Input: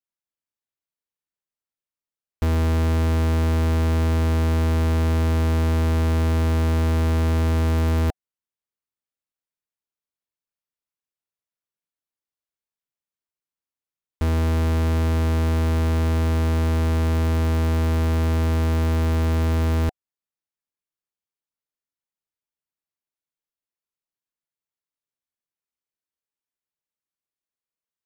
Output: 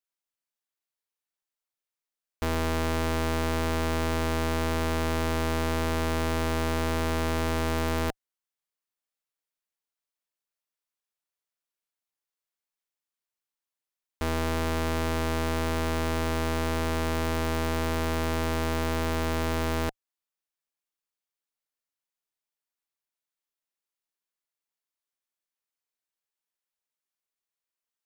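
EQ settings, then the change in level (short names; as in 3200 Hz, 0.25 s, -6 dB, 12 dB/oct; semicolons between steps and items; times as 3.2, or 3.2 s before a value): bell 89 Hz -13.5 dB 3 oct; +1.5 dB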